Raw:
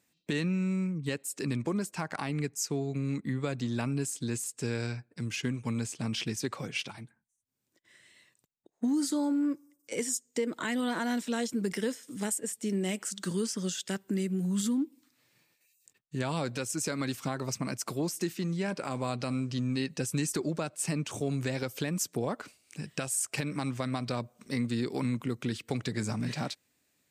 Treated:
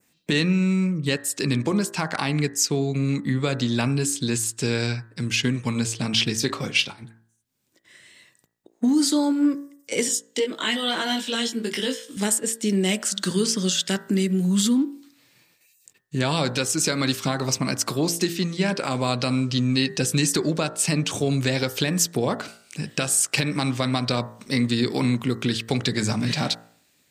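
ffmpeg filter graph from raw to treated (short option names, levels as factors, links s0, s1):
-filter_complex "[0:a]asettb=1/sr,asplit=3[s0][s1][s2];[s0]atrim=end=6.374[s3];[s1]atrim=start=6.37:end=7.03,asetpts=PTS-STARTPTS,afade=t=in:d=0.004:c=qsin,afade=t=out:st=0.656:d=0.004:c=qsin,agate=range=0.0224:threshold=0.0112:ratio=3:release=100:detection=peak,asplit=2[s4][s5];[s5]adelay=28,volume=0.237[s6];[s4][s6]amix=inputs=2:normalize=0,atrim=end_sample=29106[s7];[s2]atrim=start=7.026[s8];[s3][s7]acrossfade=d=0.004:c1=hsin:c2=qsin[s9];[s9][s8]acrossfade=d=0.004:c1=qsin:c2=hsin,asettb=1/sr,asplit=3[s10][s11][s12];[s10]atrim=end=10.084[s13];[s11]atrim=start=10.08:end=12.17,asetpts=PTS-STARTPTS,afade=t=in:d=0.004:c=qsin,afade=t=out:st=2.086:d=0.004:c=qsin,highpass=210,equalizer=f=3100:t=o:w=0.39:g=8.5,flanger=delay=17.5:depth=2:speed=1.4[s14];[s12]atrim=start=12.166[s15];[s13][s14]acrossfade=d=0.004:c1=hsin:c2=qsin[s16];[s16][s15]acrossfade=d=0.004:c1=qsin:c2=hsin,bandreject=f=56.61:t=h:w=4,bandreject=f=113.22:t=h:w=4,bandreject=f=169.83:t=h:w=4,bandreject=f=226.44:t=h:w=4,bandreject=f=283.05:t=h:w=4,bandreject=f=339.66:t=h:w=4,bandreject=f=396.27:t=h:w=4,bandreject=f=452.88:t=h:w=4,bandreject=f=509.49:t=h:w=4,bandreject=f=566.1:t=h:w=4,bandreject=f=622.71:t=h:w=4,bandreject=f=679.32:t=h:w=4,bandreject=f=735.93:t=h:w=4,bandreject=f=792.54:t=h:w=4,bandreject=f=849.15:t=h:w=4,bandreject=f=905.76:t=h:w=4,bandreject=f=962.37:t=h:w=4,bandreject=f=1018.98:t=h:w=4,bandreject=f=1075.59:t=h:w=4,bandreject=f=1132.2:t=h:w=4,bandreject=f=1188.81:t=h:w=4,bandreject=f=1245.42:t=h:w=4,bandreject=f=1302.03:t=h:w=4,bandreject=f=1358.64:t=h:w=4,bandreject=f=1415.25:t=h:w=4,bandreject=f=1471.86:t=h:w=4,bandreject=f=1528.47:t=h:w=4,bandreject=f=1585.08:t=h:w=4,bandreject=f=1641.69:t=h:w=4,bandreject=f=1698.3:t=h:w=4,bandreject=f=1754.91:t=h:w=4,bandreject=f=1811.52:t=h:w=4,bandreject=f=1868.13:t=h:w=4,bandreject=f=1924.74:t=h:w=4,bandreject=f=1981.35:t=h:w=4,adynamicequalizer=threshold=0.002:dfrequency=3800:dqfactor=1.2:tfrequency=3800:tqfactor=1.2:attack=5:release=100:ratio=0.375:range=3.5:mode=boostabove:tftype=bell,volume=2.82"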